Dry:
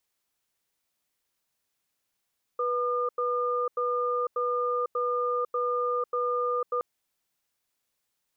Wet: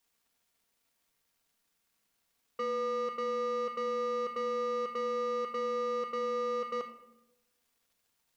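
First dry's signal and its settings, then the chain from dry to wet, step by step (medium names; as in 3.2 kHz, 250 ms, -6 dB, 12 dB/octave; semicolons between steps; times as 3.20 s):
cadence 490 Hz, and 1.21 kHz, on 0.50 s, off 0.09 s, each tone -27.5 dBFS 4.22 s
saturation -32.5 dBFS; crackle 260 per s -66 dBFS; simulated room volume 3000 m³, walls furnished, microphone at 1.7 m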